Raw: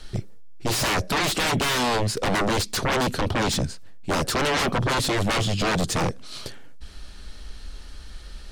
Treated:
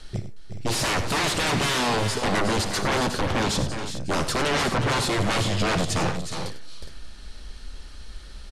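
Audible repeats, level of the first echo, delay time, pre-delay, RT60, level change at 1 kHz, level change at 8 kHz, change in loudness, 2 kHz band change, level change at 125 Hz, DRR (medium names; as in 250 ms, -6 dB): 4, -14.0 dB, 58 ms, no reverb, no reverb, -0.5 dB, -0.5 dB, -0.5 dB, -0.5 dB, 0.0 dB, no reverb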